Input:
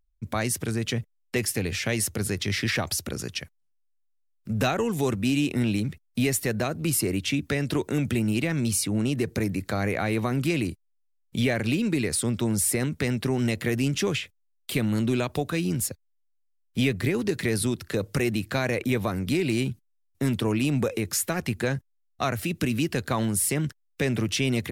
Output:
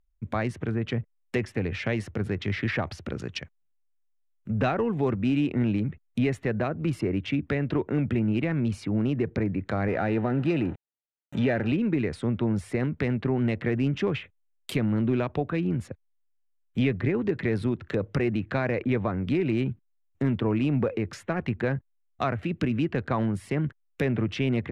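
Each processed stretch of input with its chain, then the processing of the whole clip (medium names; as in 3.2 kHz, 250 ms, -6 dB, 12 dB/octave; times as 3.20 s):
9.88–11.72 s: jump at every zero crossing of -32 dBFS + comb of notches 1.1 kHz
whole clip: local Wiener filter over 9 samples; low-pass that closes with the level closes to 2.3 kHz, closed at -25.5 dBFS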